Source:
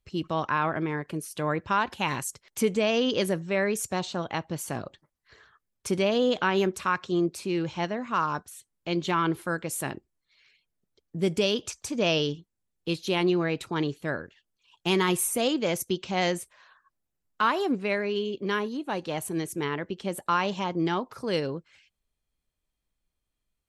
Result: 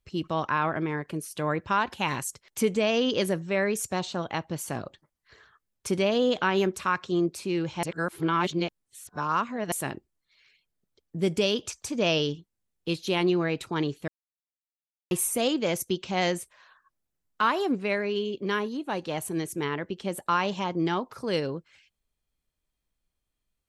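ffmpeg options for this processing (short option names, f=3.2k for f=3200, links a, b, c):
-filter_complex "[0:a]asplit=5[a][b][c][d][e];[a]atrim=end=7.832[f];[b]atrim=start=7.828:end=9.722,asetpts=PTS-STARTPTS,areverse[g];[c]atrim=start=9.718:end=14.08,asetpts=PTS-STARTPTS,afade=t=out:st=4.358:d=0.004:c=hsin[h];[d]atrim=start=14.08:end=15.11,asetpts=PTS-STARTPTS,volume=0[i];[e]atrim=start=15.11,asetpts=PTS-STARTPTS,afade=t=in:d=0.004:c=hsin[j];[f][g]acrossfade=d=0.004:c1=hsin:c2=hsin[k];[h][i][j]concat=n=3:v=0:a=1[l];[k][l]acrossfade=d=0.004:c1=hsin:c2=hsin"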